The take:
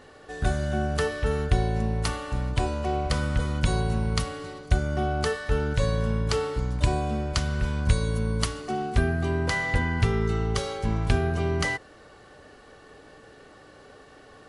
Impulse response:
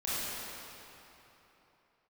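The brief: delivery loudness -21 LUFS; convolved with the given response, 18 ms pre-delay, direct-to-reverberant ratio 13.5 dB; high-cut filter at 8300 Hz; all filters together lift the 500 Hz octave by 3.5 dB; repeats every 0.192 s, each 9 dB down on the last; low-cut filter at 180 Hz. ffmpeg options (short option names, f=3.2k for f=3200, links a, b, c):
-filter_complex "[0:a]highpass=180,lowpass=8.3k,equalizer=f=500:t=o:g=4.5,aecho=1:1:192|384|576|768:0.355|0.124|0.0435|0.0152,asplit=2[a][b];[1:a]atrim=start_sample=2205,adelay=18[c];[b][c]afir=irnorm=-1:irlink=0,volume=-21dB[d];[a][d]amix=inputs=2:normalize=0,volume=6.5dB"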